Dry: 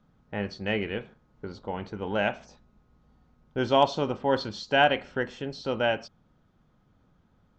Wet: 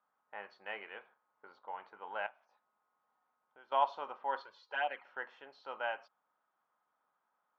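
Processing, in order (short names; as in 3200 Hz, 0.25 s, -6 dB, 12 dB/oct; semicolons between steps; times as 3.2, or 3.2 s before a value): 2.26–3.72 compressor 4:1, threshold -43 dBFS, peak gain reduction 17.5 dB; 4.42–5.05 envelope flanger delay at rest 2.6 ms, full sweep at -15 dBFS; ladder band-pass 1200 Hz, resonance 35%; gain +3 dB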